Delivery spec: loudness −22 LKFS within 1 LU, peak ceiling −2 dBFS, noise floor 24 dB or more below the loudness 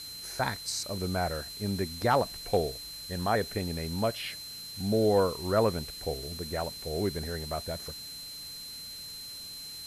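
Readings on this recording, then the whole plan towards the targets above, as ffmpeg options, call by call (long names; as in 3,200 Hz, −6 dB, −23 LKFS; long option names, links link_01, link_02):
interfering tone 4,100 Hz; level of the tone −41 dBFS; background noise floor −43 dBFS; target noise floor −56 dBFS; integrated loudness −31.5 LKFS; sample peak −14.5 dBFS; target loudness −22.0 LKFS
→ -af "bandreject=frequency=4100:width=30"
-af "afftdn=noise_reduction=13:noise_floor=-43"
-af "volume=9.5dB"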